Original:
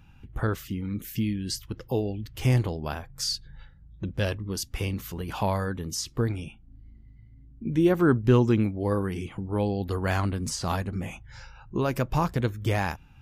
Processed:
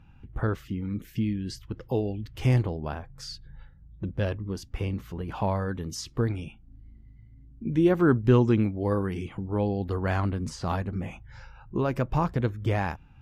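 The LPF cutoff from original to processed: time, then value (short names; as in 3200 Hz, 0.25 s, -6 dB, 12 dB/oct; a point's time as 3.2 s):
LPF 6 dB/oct
1900 Hz
from 1.83 s 3400 Hz
from 2.62 s 1400 Hz
from 5.69 s 3800 Hz
from 9.41 s 2000 Hz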